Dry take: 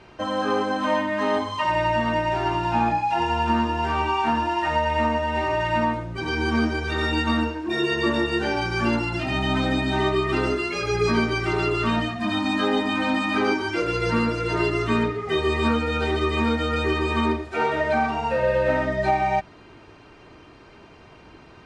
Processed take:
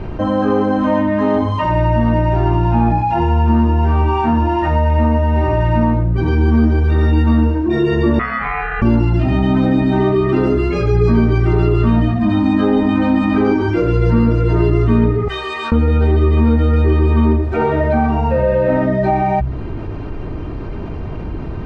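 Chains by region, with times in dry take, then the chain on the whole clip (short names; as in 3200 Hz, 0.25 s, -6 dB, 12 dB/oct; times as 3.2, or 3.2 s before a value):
8.19–8.82 polynomial smoothing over 65 samples + ring modulator 1600 Hz
15.28–15.72 HPF 1500 Hz + bell 2100 Hz -7 dB 0.33 oct + core saturation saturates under 1600 Hz
whole clip: tilt -4.5 dB/oct; de-hum 64.35 Hz, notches 2; fast leveller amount 50%; gain -1 dB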